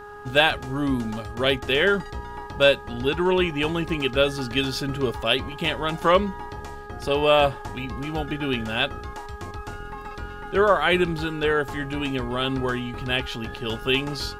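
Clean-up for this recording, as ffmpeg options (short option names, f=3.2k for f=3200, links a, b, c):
-af "bandreject=f=413.7:t=h:w=4,bandreject=f=827.4:t=h:w=4,bandreject=f=1.2411k:t=h:w=4,bandreject=f=1.6548k:t=h:w=4"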